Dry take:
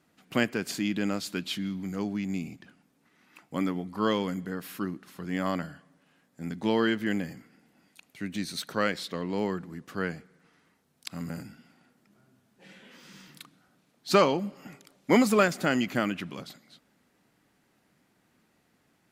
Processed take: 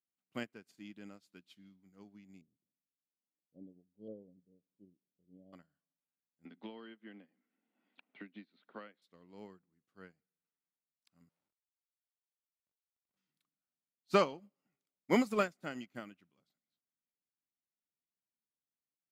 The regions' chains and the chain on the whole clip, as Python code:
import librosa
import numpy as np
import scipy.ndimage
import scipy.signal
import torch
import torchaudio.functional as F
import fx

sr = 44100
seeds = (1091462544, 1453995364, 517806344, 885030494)

y = fx.chain(x, sr, fx.filter_lfo_lowpass(shape='saw_up', hz=1.2, low_hz=670.0, high_hz=3000.0, q=1.4),
    fx.ellip_bandstop(low_hz=570.0, high_hz=3600.0, order=3, stop_db=60),
    fx.spacing_loss(db_at_10k=37), at=(2.41, 5.53))
y = fx.chain(y, sr, fx.ellip_bandpass(low_hz=220.0, high_hz=3500.0, order=3, stop_db=40),
    fx.band_squash(depth_pct=100), at=(6.45, 9.02))
y = fx.chain(y, sr, fx.schmitt(flips_db=-42.5),
    fx.highpass(hz=550.0, slope=6), at=(11.29, 13.17))
y = fx.notch(y, sr, hz=1700.0, q=21.0)
y = fx.upward_expand(y, sr, threshold_db=-39.0, expansion=2.5)
y = y * 10.0 ** (-5.5 / 20.0)